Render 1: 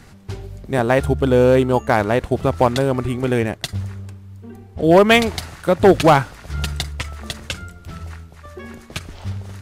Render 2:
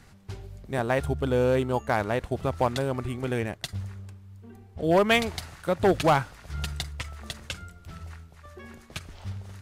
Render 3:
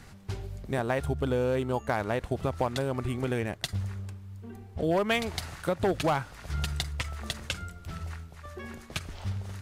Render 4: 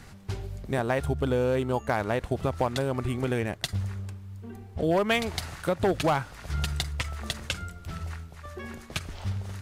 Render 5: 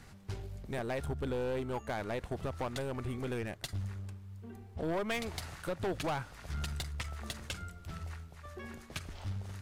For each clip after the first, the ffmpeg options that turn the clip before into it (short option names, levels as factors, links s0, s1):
-af "equalizer=f=310:w=0.87:g=-3,volume=0.398"
-af "acompressor=threshold=0.0282:ratio=2.5,volume=1.5"
-af "asoftclip=type=hard:threshold=0.141,volume=1.26"
-af "aeval=exprs='(tanh(15.8*val(0)+0.3)-tanh(0.3))/15.8':c=same,volume=0.531"